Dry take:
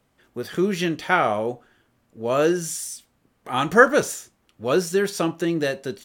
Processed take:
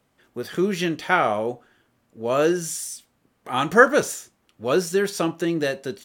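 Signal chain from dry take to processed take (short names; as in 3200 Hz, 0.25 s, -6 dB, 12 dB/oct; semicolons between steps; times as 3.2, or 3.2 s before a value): low shelf 71 Hz -7 dB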